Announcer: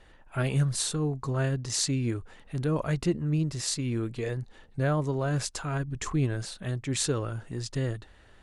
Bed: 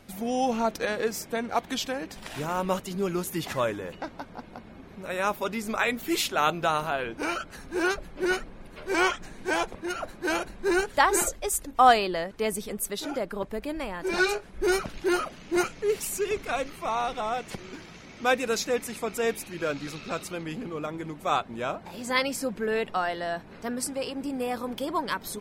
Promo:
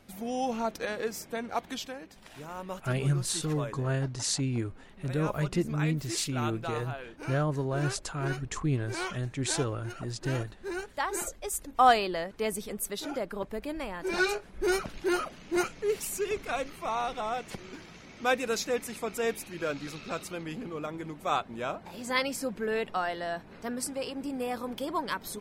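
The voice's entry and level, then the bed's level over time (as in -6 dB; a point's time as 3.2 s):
2.50 s, -2.0 dB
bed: 1.67 s -5 dB
2.08 s -11.5 dB
10.92 s -11.5 dB
11.81 s -3 dB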